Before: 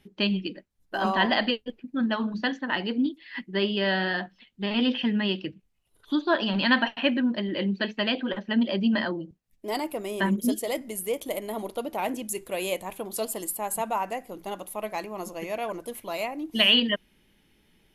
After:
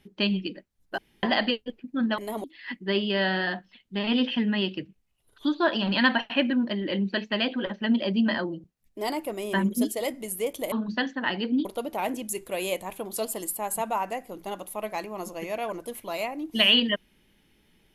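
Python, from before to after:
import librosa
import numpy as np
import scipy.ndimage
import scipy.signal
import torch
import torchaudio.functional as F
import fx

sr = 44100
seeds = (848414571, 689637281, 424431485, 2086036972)

y = fx.edit(x, sr, fx.room_tone_fill(start_s=0.98, length_s=0.25),
    fx.swap(start_s=2.18, length_s=0.93, other_s=11.39, other_length_s=0.26), tone=tone)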